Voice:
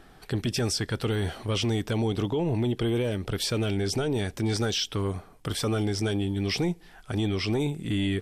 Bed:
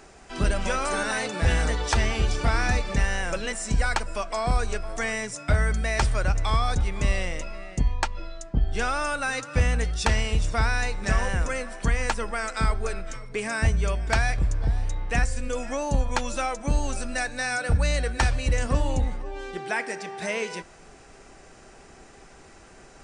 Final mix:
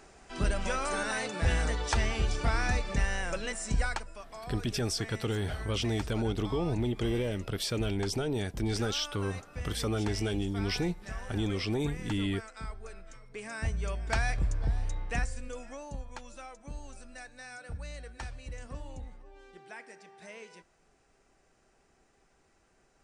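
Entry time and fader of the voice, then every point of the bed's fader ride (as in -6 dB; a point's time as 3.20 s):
4.20 s, -4.5 dB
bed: 3.82 s -5.5 dB
4.21 s -17 dB
12.81 s -17 dB
14.31 s -5.5 dB
14.97 s -5.5 dB
16.11 s -18.5 dB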